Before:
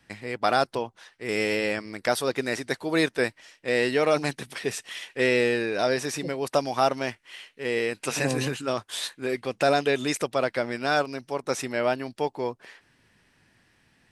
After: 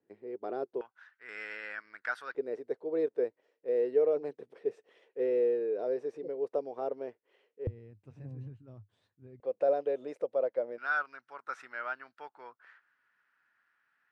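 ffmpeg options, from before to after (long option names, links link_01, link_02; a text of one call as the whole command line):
ffmpeg -i in.wav -af "asetnsamples=nb_out_samples=441:pad=0,asendcmd='0.81 bandpass f 1500;2.35 bandpass f 450;7.67 bandpass f 100;9.4 bandpass f 520;10.78 bandpass f 1400',bandpass=frequency=400:width_type=q:width=5.6:csg=0" out.wav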